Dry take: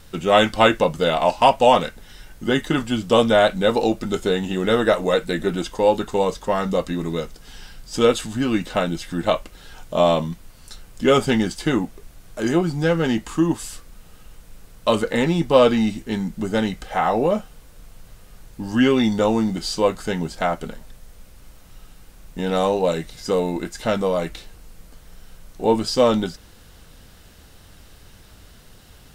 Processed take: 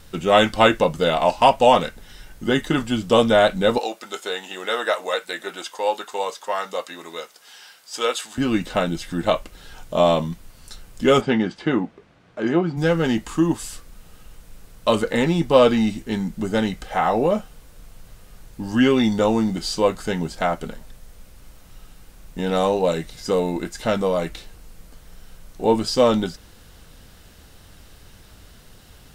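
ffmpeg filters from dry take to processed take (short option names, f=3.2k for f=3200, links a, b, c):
-filter_complex "[0:a]asettb=1/sr,asplit=3[a][b][c];[a]atrim=end=3.784[d];[b]atrim=start=3.78:end=8.38,asetpts=PTS-STARTPTS,afade=t=in:d=0.004:c=qsin,afade=t=out:st=4.596:d=0.004:c=qsin,highpass=700[e];[c]atrim=start=8.376[f];[d][e]acrossfade=d=0.004:c1=hsin:c2=qsin[g];[g][f]acrossfade=d=0.004:c1=qsin:c2=hsin,asplit=3[h][i][j];[h]afade=t=out:st=11.2:d=0.02[k];[i]highpass=140,lowpass=2.8k,afade=t=in:st=11.2:d=0.02,afade=t=out:st=12.76:d=0.02[l];[j]afade=t=in:st=12.76:d=0.02[m];[k][l][m]amix=inputs=3:normalize=0"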